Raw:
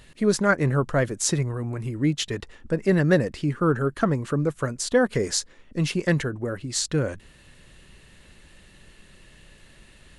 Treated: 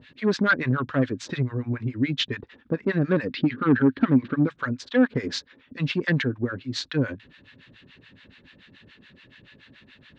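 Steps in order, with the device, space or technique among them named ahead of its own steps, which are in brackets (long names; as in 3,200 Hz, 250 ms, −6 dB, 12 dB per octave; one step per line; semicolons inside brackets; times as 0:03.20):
0:03.33–0:04.47: graphic EQ with 10 bands 250 Hz +8 dB, 1,000 Hz −3 dB, 2,000 Hz +4 dB, 4,000 Hz +7 dB, 8,000 Hz −10 dB
guitar amplifier with harmonic tremolo (two-band tremolo in antiphase 7 Hz, depth 100%, crossover 790 Hz; soft clipping −18.5 dBFS, distortion −12 dB; loudspeaker in its box 100–4,500 Hz, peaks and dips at 110 Hz +6 dB, 260 Hz +10 dB, 700 Hz −4 dB, 1,600 Hz +6 dB, 2,400 Hz +4 dB, 3,600 Hz +6 dB)
level +2.5 dB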